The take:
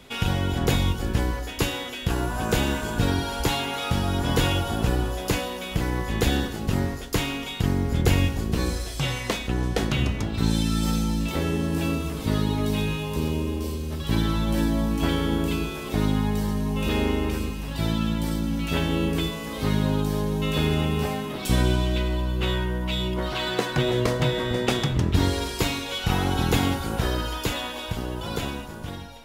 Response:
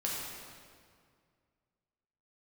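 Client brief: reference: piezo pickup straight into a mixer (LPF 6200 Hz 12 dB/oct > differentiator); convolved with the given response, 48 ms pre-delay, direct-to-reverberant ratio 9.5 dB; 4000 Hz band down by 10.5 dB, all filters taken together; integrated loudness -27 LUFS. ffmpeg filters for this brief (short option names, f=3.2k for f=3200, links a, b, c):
-filter_complex "[0:a]equalizer=f=4k:t=o:g=-5,asplit=2[a][b];[1:a]atrim=start_sample=2205,adelay=48[c];[b][c]afir=irnorm=-1:irlink=0,volume=-14dB[d];[a][d]amix=inputs=2:normalize=0,lowpass=6.2k,aderivative,volume=15.5dB"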